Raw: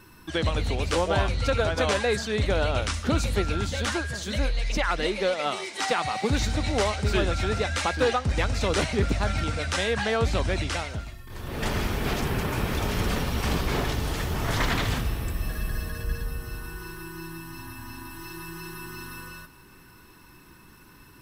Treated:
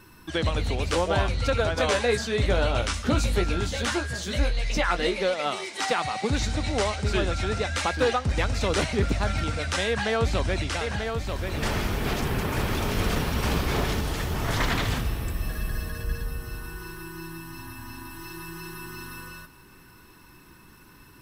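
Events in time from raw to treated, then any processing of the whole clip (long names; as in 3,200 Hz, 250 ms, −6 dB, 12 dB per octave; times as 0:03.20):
0:01.78–0:05.23: double-tracking delay 17 ms −6 dB
0:06.06–0:07.75: Chebyshev low-pass filter 9,400 Hz
0:09.87–0:14.01: single-tap delay 938 ms −5.5 dB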